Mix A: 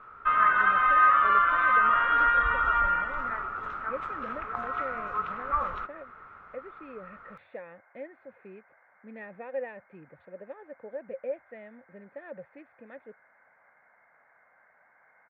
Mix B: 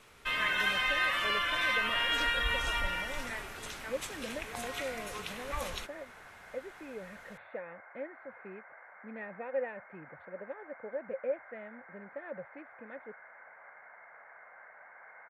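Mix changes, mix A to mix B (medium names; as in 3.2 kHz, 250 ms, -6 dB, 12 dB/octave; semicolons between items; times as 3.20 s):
first sound: remove resonant low-pass 1.3 kHz, resonance Q 12; second sound +9.0 dB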